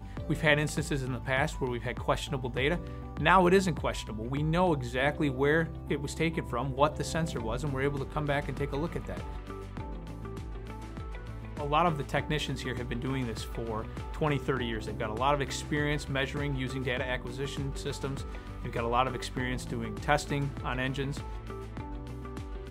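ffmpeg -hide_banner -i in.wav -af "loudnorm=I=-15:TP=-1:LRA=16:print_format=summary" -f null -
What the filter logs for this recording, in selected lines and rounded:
Input Integrated:    -31.6 LUFS
Input True Peak:      -7.5 dBTP
Input LRA:             6.2 LU
Input Threshold:     -41.8 LUFS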